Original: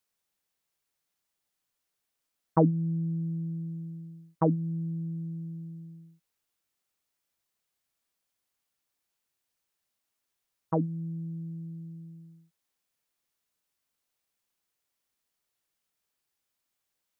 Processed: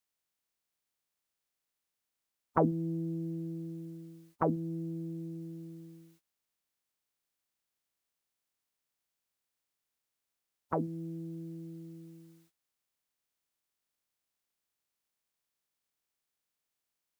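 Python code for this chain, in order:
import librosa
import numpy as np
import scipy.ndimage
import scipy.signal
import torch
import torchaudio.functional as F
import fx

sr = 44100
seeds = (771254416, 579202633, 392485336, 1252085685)

y = fx.spec_clip(x, sr, under_db=21)
y = y * librosa.db_to_amplitude(-4.0)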